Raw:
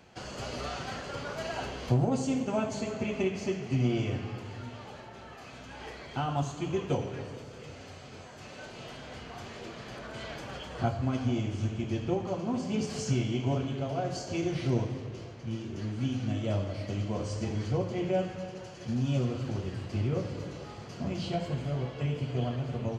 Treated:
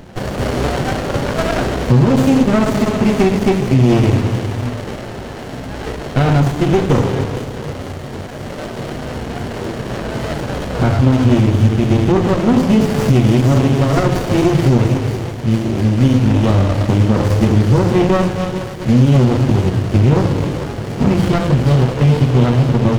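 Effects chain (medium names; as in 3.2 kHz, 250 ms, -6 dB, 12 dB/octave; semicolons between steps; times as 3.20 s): de-hum 84.46 Hz, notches 32; vibrato 0.96 Hz 10 cents; on a send: feedback echo behind a high-pass 465 ms, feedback 65%, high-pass 2 kHz, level -6 dB; on the sum: loudness maximiser +23 dB; sliding maximum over 33 samples; trim -1.5 dB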